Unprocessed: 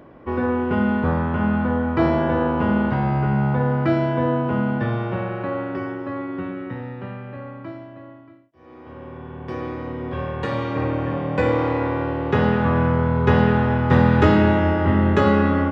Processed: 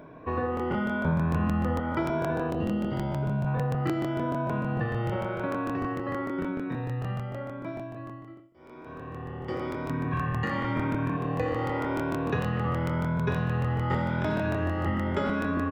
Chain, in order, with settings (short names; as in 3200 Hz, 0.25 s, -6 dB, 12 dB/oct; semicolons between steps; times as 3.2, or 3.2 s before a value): moving spectral ripple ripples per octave 1.6, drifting +0.91 Hz, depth 12 dB; de-hum 59.38 Hz, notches 7; speakerphone echo 80 ms, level -10 dB; reverb RT60 0.45 s, pre-delay 6 ms, DRR 11.5 dB; 2.5–3.47 spectral gain 740–2700 Hz -9 dB; 9.89–11.17 graphic EQ 125/250/500/1000/2000/4000 Hz +7/+5/-6/+3/+6/-3 dB; compressor 4:1, threshold -23 dBFS, peak gain reduction 11.5 dB; 1.05–1.78 low shelf 160 Hz +6.5 dB; crackling interface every 0.15 s, samples 1024, repeat, from 0.55; gain -3 dB